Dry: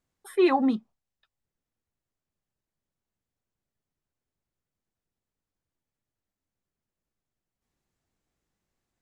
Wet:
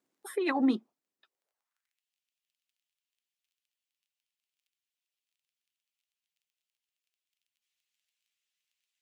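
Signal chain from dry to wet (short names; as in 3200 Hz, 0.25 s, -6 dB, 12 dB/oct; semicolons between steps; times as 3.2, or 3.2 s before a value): harmonic-percussive split harmonic -9 dB; crackle 19/s -67 dBFS; negative-ratio compressor -30 dBFS, ratio -0.5; high-pass sweep 290 Hz -> 2800 Hz, 1.22–2.02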